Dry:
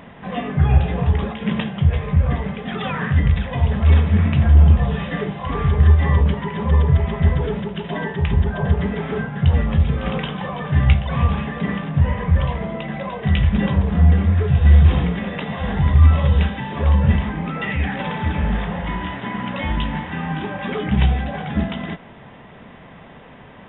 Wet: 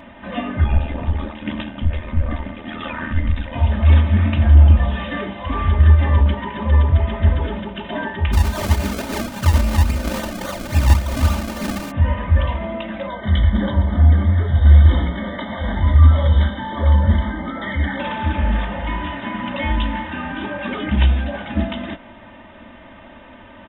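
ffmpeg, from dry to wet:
-filter_complex "[0:a]asettb=1/sr,asplit=3[a][b][c];[a]atrim=end=0.644[d];[b]atrim=start=0.64:end=3.56,asetpts=PTS-STARTPTS,afade=t=in:d=0.004:c=qsin,afade=t=out:st=2.916:d=0.004:c=qsin,tremolo=f=79:d=0.889[e];[c]atrim=start=3.556[f];[d][e]acrossfade=d=0.004:c1=hsin:c2=qsin[g];[g][f]acrossfade=d=0.004:c1=qsin:c2=hsin,asplit=3[h][i][j];[h]afade=t=out:st=8.32:d=0.02[k];[i]acrusher=samples=33:mix=1:aa=0.000001:lfo=1:lforange=33:lforate=3.6,afade=t=in:st=8.32:d=0.02,afade=t=out:st=11.9:d=0.02[l];[j]afade=t=in:st=11.9:d=0.02[m];[k][l][m]amix=inputs=3:normalize=0,asettb=1/sr,asplit=3[n][o][p];[n]atrim=end=13.074[q];[o]atrim=start=13.07:end=18,asetpts=PTS-STARTPTS,afade=t=in:d=0.004:c=qsin,afade=t=out:st=4.926:d=0.004:c=qsin,asuperstop=centerf=2600:order=12:qfactor=3.5[r];[p]atrim=start=17.996[s];[q][r]acrossfade=d=0.004:c1=hsin:c2=qsin[t];[t][s]acrossfade=d=0.004:c1=qsin:c2=hsin,equalizer=f=380:w=5.3:g=-4.5,aecho=1:1:3.3:0.94,volume=-1dB"

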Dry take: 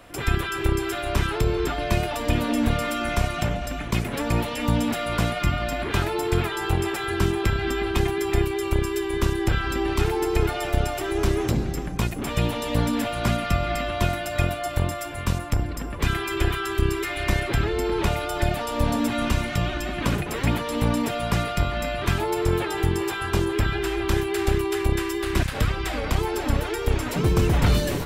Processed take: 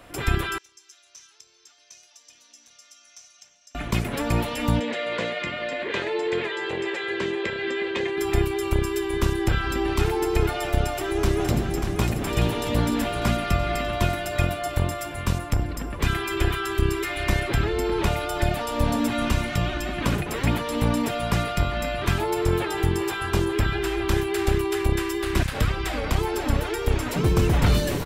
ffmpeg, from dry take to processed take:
-filter_complex "[0:a]asettb=1/sr,asplit=3[a][b][c];[a]atrim=end=0.584[d];[b]atrim=start=0.58:end=3.75,asetpts=PTS-STARTPTS,afade=t=in:d=0.004:c=qsin,afade=t=out:st=3.166:d=0.004:c=qsin,bandpass=f=6k:t=q:w=9.3[e];[c]atrim=start=3.746[f];[d][e]acrossfade=d=0.004:c1=hsin:c2=qsin[g];[g][f]acrossfade=d=0.004:c1=qsin:c2=hsin,asplit=3[h][i][j];[h]afade=t=out:st=4.79:d=0.02[k];[i]highpass=300,equalizer=f=300:t=q:w=4:g=-4,equalizer=f=510:t=q:w=4:g=10,equalizer=f=760:t=q:w=4:g=-9,equalizer=f=1.3k:t=q:w=4:g=-9,equalizer=f=1.9k:t=q:w=4:g=6,equalizer=f=5.4k:t=q:w=4:g=-9,lowpass=f=6.1k:w=0.5412,lowpass=f=6.1k:w=1.3066,afade=t=in:st=4.79:d=0.02,afade=t=out:st=8.16:d=0.02[l];[j]afade=t=in:st=8.16:d=0.02[m];[k][l][m]amix=inputs=3:normalize=0,asplit=2[n][o];[o]afade=t=in:st=10.8:d=0.01,afade=t=out:st=11.94:d=0.01,aecho=0:1:590|1180|1770|2360|2950|3540|4130|4720|5310|5900:0.501187|0.325772|0.211752|0.137639|0.0894651|0.0581523|0.037799|0.0245693|0.0159701|0.0103805[p];[n][p]amix=inputs=2:normalize=0"

